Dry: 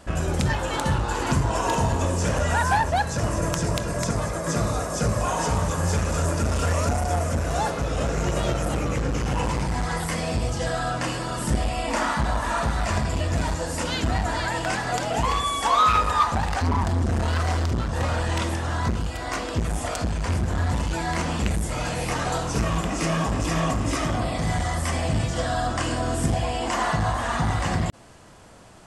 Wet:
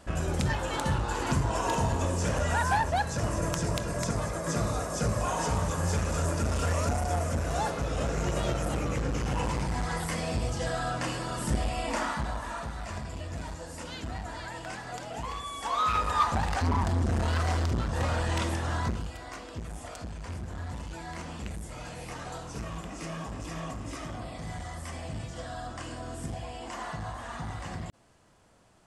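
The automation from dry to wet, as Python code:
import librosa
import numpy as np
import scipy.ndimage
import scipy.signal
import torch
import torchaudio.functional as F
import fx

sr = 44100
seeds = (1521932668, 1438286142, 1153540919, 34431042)

y = fx.gain(x, sr, db=fx.line((11.87, -5.0), (12.7, -13.0), (15.47, -13.0), (16.26, -4.0), (18.76, -4.0), (19.35, -13.5)))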